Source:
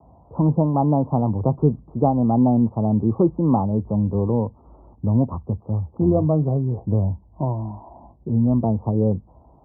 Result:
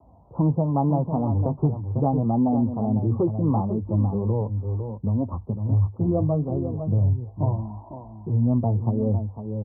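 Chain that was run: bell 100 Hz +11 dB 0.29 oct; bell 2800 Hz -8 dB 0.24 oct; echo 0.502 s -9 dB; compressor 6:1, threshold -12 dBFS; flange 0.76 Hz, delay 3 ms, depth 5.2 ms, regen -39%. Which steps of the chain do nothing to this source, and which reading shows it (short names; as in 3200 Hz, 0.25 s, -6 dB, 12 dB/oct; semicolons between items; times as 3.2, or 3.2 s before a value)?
bell 2800 Hz: input band ends at 810 Hz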